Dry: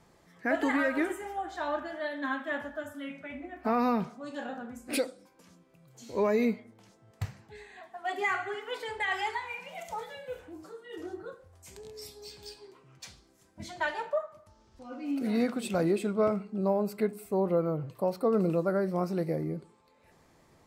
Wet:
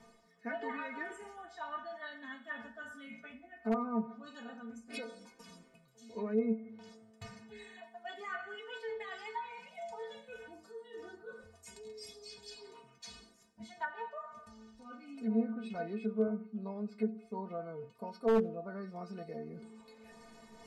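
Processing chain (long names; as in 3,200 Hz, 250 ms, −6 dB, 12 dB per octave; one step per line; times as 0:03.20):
low-pass filter 9,900 Hz 12 dB per octave
stiff-string resonator 220 Hz, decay 0.24 s, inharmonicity 0.008
reversed playback
upward compression, threshold −45 dBFS
reversed playback
treble cut that deepens with the level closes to 960 Hz, closed at −34 dBFS
wave folding −24.5 dBFS
on a send: delay with a high-pass on its return 89 ms, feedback 36%, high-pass 2,200 Hz, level −23 dB
on the sum: level +3.5 dB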